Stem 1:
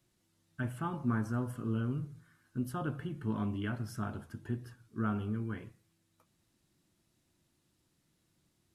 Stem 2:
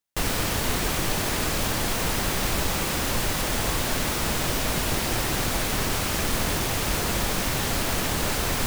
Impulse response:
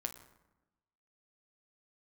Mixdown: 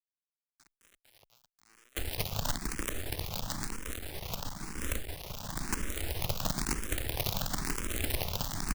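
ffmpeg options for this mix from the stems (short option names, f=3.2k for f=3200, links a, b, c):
-filter_complex "[0:a]highshelf=f=2.7k:g=3,aeval=exprs='(mod(39.8*val(0)+1,2)-1)/39.8':c=same,volume=-8.5dB,afade=t=in:st=3.59:d=0.41:silence=0.298538,afade=t=out:st=5.02:d=0.61:silence=0.316228,asplit=3[a][b][c];[b]volume=-23.5dB[d];[1:a]bandreject=f=60:t=h:w=6,bandreject=f=120:t=h:w=6,adelay=1800,volume=2.5dB,asplit=2[e][f];[f]volume=-14dB[g];[c]apad=whole_len=461712[h];[e][h]sidechaincompress=threshold=-58dB:ratio=8:attack=42:release=444[i];[2:a]atrim=start_sample=2205[j];[d][g]amix=inputs=2:normalize=0[k];[k][j]afir=irnorm=-1:irlink=0[l];[a][i][l]amix=inputs=3:normalize=0,acrossover=split=110|350[m][n][o];[m]acompressor=threshold=-28dB:ratio=4[p];[n]acompressor=threshold=-41dB:ratio=4[q];[o]acompressor=threshold=-38dB:ratio=4[r];[p][q][r]amix=inputs=3:normalize=0,acrusher=bits=5:dc=4:mix=0:aa=0.000001,asplit=2[s][t];[t]afreqshift=1[u];[s][u]amix=inputs=2:normalize=1"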